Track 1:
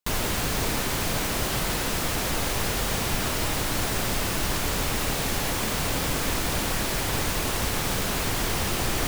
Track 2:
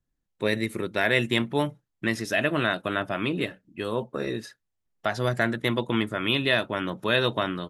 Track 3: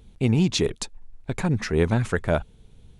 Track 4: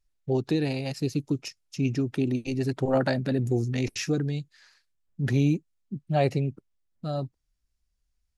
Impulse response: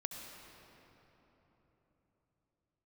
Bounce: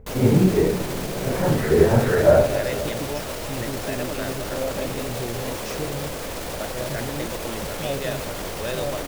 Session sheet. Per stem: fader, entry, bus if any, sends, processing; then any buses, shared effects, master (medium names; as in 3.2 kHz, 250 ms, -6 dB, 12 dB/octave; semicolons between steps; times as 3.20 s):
+1.0 dB, 0.00 s, no send, peak limiter -24.5 dBFS, peak gain reduction 11 dB
-12.0 dB, 1.55 s, no send, none
-1.0 dB, 0.00 s, send -4.5 dB, phase randomisation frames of 200 ms; steep low-pass 2.1 kHz
-4.5 dB, 1.70 s, no send, peak limiter -22.5 dBFS, peak gain reduction 11 dB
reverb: on, RT60 4.0 s, pre-delay 62 ms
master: peaking EQ 540 Hz +10 dB 0.8 oct